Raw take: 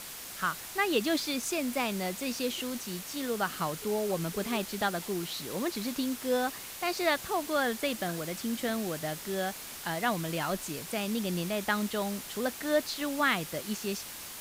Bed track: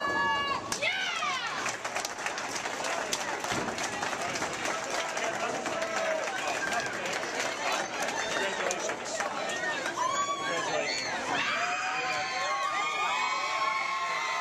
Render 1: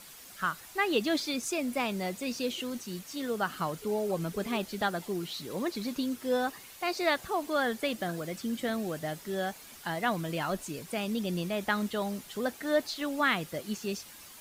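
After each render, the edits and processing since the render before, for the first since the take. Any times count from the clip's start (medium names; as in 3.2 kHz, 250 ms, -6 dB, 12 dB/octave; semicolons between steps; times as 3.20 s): noise reduction 9 dB, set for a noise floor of -43 dBFS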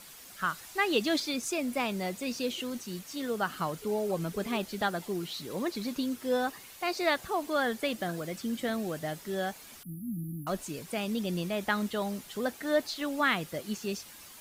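0.49–1.20 s: peaking EQ 5.6 kHz +3 dB 2 oct; 9.83–10.47 s: brick-wall FIR band-stop 320–10000 Hz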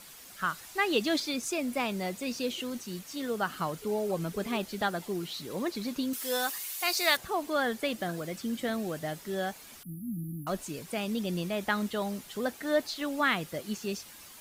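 6.13–7.17 s: tilt EQ +4 dB/octave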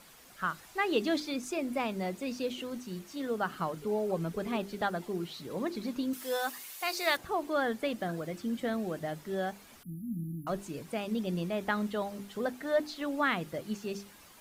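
treble shelf 2.4 kHz -8.5 dB; hum notches 50/100/150/200/250/300/350/400 Hz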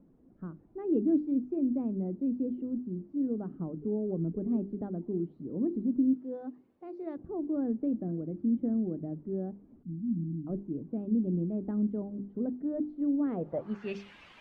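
low-pass sweep 290 Hz -> 2.7 kHz, 13.20–13.97 s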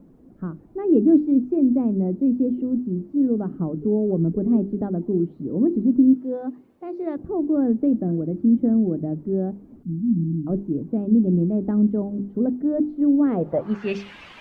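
trim +11 dB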